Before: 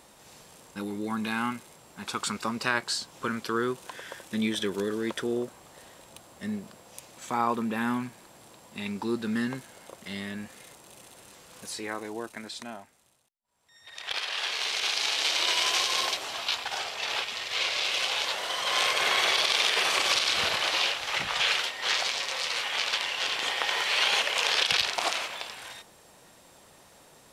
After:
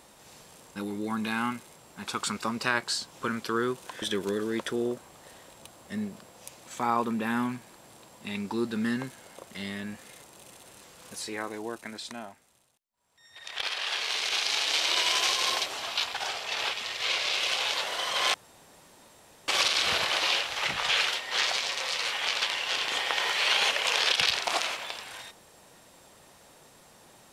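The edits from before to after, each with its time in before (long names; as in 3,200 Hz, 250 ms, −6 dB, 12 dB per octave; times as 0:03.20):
0:04.02–0:04.53: remove
0:18.85–0:19.99: fill with room tone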